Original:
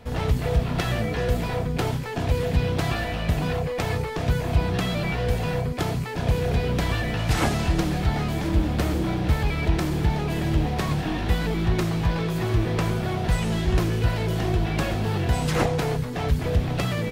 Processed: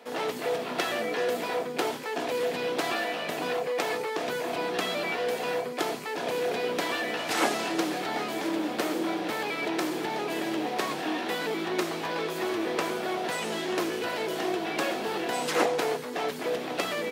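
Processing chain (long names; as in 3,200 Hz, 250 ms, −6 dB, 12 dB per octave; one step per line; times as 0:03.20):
high-pass filter 290 Hz 24 dB per octave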